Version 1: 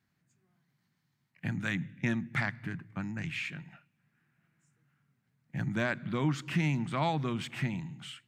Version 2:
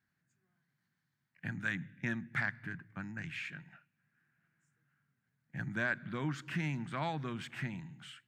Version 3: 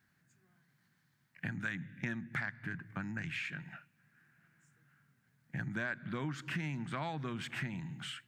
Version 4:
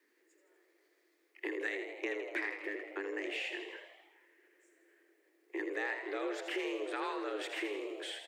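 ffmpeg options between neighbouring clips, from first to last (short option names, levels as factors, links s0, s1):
-af "equalizer=f=1600:t=o:w=0.47:g=9,volume=0.447"
-af "acompressor=threshold=0.00447:ratio=3,volume=2.66"
-filter_complex "[0:a]afreqshift=200,asplit=9[s0][s1][s2][s3][s4][s5][s6][s7][s8];[s1]adelay=81,afreqshift=81,volume=0.398[s9];[s2]adelay=162,afreqshift=162,volume=0.243[s10];[s3]adelay=243,afreqshift=243,volume=0.148[s11];[s4]adelay=324,afreqshift=324,volume=0.0902[s12];[s5]adelay=405,afreqshift=405,volume=0.055[s13];[s6]adelay=486,afreqshift=486,volume=0.0335[s14];[s7]adelay=567,afreqshift=567,volume=0.0204[s15];[s8]adelay=648,afreqshift=648,volume=0.0124[s16];[s0][s9][s10][s11][s12][s13][s14][s15][s16]amix=inputs=9:normalize=0"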